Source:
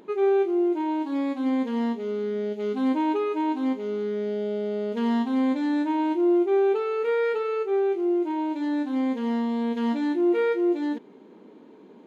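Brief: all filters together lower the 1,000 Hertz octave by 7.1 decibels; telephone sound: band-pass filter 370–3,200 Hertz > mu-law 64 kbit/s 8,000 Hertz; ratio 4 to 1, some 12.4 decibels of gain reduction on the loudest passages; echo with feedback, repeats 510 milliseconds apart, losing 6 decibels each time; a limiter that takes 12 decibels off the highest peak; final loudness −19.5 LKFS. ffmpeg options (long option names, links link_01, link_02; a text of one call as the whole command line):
ffmpeg -i in.wav -af "equalizer=frequency=1000:width_type=o:gain=-8.5,acompressor=threshold=-35dB:ratio=4,alimiter=level_in=15.5dB:limit=-24dB:level=0:latency=1,volume=-15.5dB,highpass=370,lowpass=3200,aecho=1:1:510|1020|1530|2040|2550|3060:0.501|0.251|0.125|0.0626|0.0313|0.0157,volume=28dB" -ar 8000 -c:a pcm_mulaw out.wav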